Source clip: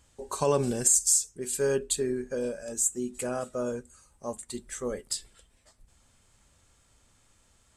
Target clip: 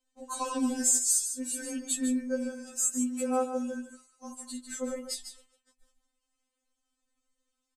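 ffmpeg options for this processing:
-filter_complex "[0:a]agate=range=0.158:threshold=0.00141:ratio=16:detection=peak,aecho=1:1:149:0.355,acontrast=63,asettb=1/sr,asplit=3[s0][s1][s2];[s0]atrim=end=2.784[s3];[s1]atrim=start=2.78:end=3.19,asetpts=PTS-STARTPTS,afade=t=in:d=0.004:c=qsin,afade=t=out:st=0.406:d=0.004:c=qsin,equalizer=f=1300:t=o:w=1.1:g=13[s4];[s2]atrim=start=3.186[s5];[s3][s4]acrossfade=d=0.004:c1=hsin:c2=qsin[s6];[s6][s5]acrossfade=d=0.004:c1=qsin:c2=hsin,afftfilt=real='re*3.46*eq(mod(b,12),0)':imag='im*3.46*eq(mod(b,12),0)':win_size=2048:overlap=0.75,volume=0.501"

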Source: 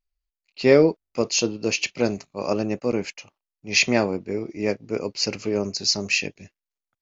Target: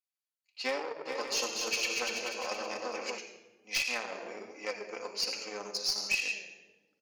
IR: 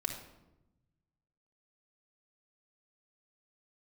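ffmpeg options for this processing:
-filter_complex "[1:a]atrim=start_sample=2205,asetrate=29988,aresample=44100[s0];[0:a][s0]afir=irnorm=-1:irlink=0,acrossover=split=5600[s1][s2];[s2]acompressor=threshold=0.0141:ratio=4:attack=1:release=60[s3];[s1][s3]amix=inputs=2:normalize=0,highshelf=f=5900:g=8.5,aeval=exprs='1*(cos(1*acos(clip(val(0)/1,-1,1)))-cos(1*PI/2))+0.355*(cos(2*acos(clip(val(0)/1,-1,1)))-cos(2*PI/2))+0.0631*(cos(7*acos(clip(val(0)/1,-1,1)))-cos(7*PI/2))':c=same,acompressor=threshold=0.126:ratio=16,highpass=740,asoftclip=type=hard:threshold=0.141,flanger=delay=3.5:depth=2.4:regen=65:speed=1.3:shape=sinusoidal,asplit=3[s4][s5][s6];[s4]afade=t=out:st=1.05:d=0.02[s7];[s5]aecho=1:1:240|432|585.6|708.5|806.8:0.631|0.398|0.251|0.158|0.1,afade=t=in:st=1.05:d=0.02,afade=t=out:st=3.17:d=0.02[s8];[s6]afade=t=in:st=3.17:d=0.02[s9];[s7][s8][s9]amix=inputs=3:normalize=0,volume=0.841"

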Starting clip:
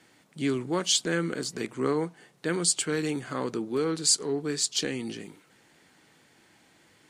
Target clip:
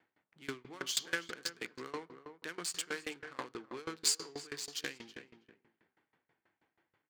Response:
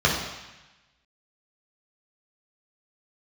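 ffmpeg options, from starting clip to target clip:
-filter_complex "[0:a]adynamicsmooth=sensitivity=7.5:basefreq=1000,tiltshelf=f=680:g=-9.5,asplit=2[s0][s1];[s1]adelay=323,lowpass=f=1600:p=1,volume=0.355,asplit=2[s2][s3];[s3]adelay=323,lowpass=f=1600:p=1,volume=0.18,asplit=2[s4][s5];[s5]adelay=323,lowpass=f=1600:p=1,volume=0.18[s6];[s0][s2][s4][s6]amix=inputs=4:normalize=0,asplit=2[s7][s8];[1:a]atrim=start_sample=2205,afade=t=out:st=0.33:d=0.01,atrim=end_sample=14994[s9];[s8][s9]afir=irnorm=-1:irlink=0,volume=0.0282[s10];[s7][s10]amix=inputs=2:normalize=0,aeval=exprs='val(0)*pow(10,-24*if(lt(mod(6.2*n/s,1),2*abs(6.2)/1000),1-mod(6.2*n/s,1)/(2*abs(6.2)/1000),(mod(6.2*n/s,1)-2*abs(6.2)/1000)/(1-2*abs(6.2)/1000))/20)':c=same,volume=0.531"

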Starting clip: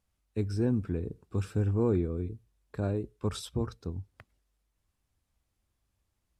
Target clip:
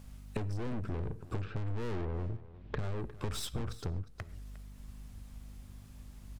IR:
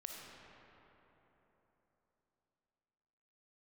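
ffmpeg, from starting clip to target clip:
-filter_complex "[0:a]asettb=1/sr,asplit=3[s0][s1][s2];[s0]atrim=end=1.414[s3];[s1]atrim=start=1.41:end=2.79,asetpts=PTS-STARTPTS,afade=t=in:d=0.004:c=qsin,afade=t=out:st=1.376:d=0.004:c=qsin,lowpass=f=3400:w=0.5412,lowpass=f=3400:w=1.3066[s4];[s2]atrim=start=2.786[s5];[s3][s4]acrossfade=d=0.004:c1=hsin:c2=qsin[s6];[s6][s5]acrossfade=d=0.004:c1=qsin:c2=hsin,aeval=exprs='(tanh(112*val(0)+0.55)-tanh(0.55))/112':c=same,lowshelf=f=160:g=6,acontrast=77,aeval=exprs='val(0)+0.000562*(sin(2*PI*50*n/s)+sin(2*PI*2*50*n/s)/2+sin(2*PI*3*50*n/s)/3+sin(2*PI*4*50*n/s)/4+sin(2*PI*5*50*n/s)/5)':c=same,acompressor=threshold=0.00282:ratio=6,aecho=1:1:356:0.141,asplit=2[s7][s8];[1:a]atrim=start_sample=2205,atrim=end_sample=6615[s9];[s8][s9]afir=irnorm=-1:irlink=0,volume=0.376[s10];[s7][s10]amix=inputs=2:normalize=0,volume=5.01"

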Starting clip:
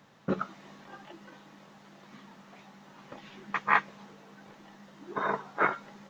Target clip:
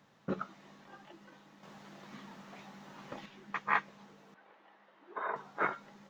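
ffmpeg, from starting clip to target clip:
-filter_complex "[0:a]asettb=1/sr,asplit=3[s0][s1][s2];[s0]atrim=end=1.634[s3];[s1]atrim=start=1.63:end=3.26,asetpts=PTS-STARTPTS,afade=t=in:d=0.004:c=qsin,afade=t=out:st=1.626:d=0.004:c=qsin,acontrast=86[s4];[s2]atrim=start=3.256[s5];[s3][s4]acrossfade=d=0.004:c1=hsin:c2=qsin[s6];[s6][s5]acrossfade=d=0.004:c1=qsin:c2=hsin,asettb=1/sr,asplit=3[s7][s8][s9];[s7]atrim=end=4.344[s10];[s8]atrim=start=4.34:end=5.36,asetpts=PTS-STARTPTS,afade=t=in:d=0.004:c=qsin,afade=t=out:st=1.016:d=0.004:c=qsin,acrossover=split=360 3400:gain=0.0891 1 0.0891[s11][s12][s13];[s11][s12][s13]amix=inputs=3:normalize=0[s14];[s9]atrim=start=5.356[s15];[s10][s14]acrossfade=d=0.004:c1=hsin:c2=qsin[s16];[s16][s15]acrossfade=d=0.004:c1=qsin:c2=hsin,volume=0.501"

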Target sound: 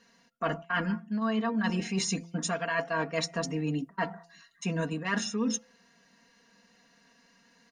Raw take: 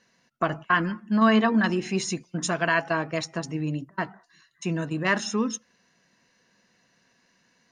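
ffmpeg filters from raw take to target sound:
-af "aecho=1:1:4.3:0.84,bandreject=f=169.9:t=h:w=4,bandreject=f=339.8:t=h:w=4,bandreject=f=509.7:t=h:w=4,bandreject=f=679.6:t=h:w=4,bandreject=f=849.5:t=h:w=4,areverse,acompressor=threshold=0.0501:ratio=12,areverse"

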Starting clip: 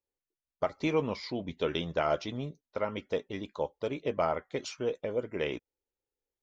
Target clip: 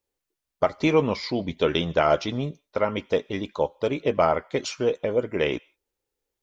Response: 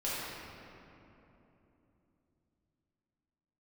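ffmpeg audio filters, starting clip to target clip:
-filter_complex "[0:a]asplit=2[s0][s1];[s1]highpass=1200[s2];[1:a]atrim=start_sample=2205,afade=t=out:st=0.16:d=0.01,atrim=end_sample=7497,adelay=75[s3];[s2][s3]afir=irnorm=-1:irlink=0,volume=0.0422[s4];[s0][s4]amix=inputs=2:normalize=0,volume=2.66"

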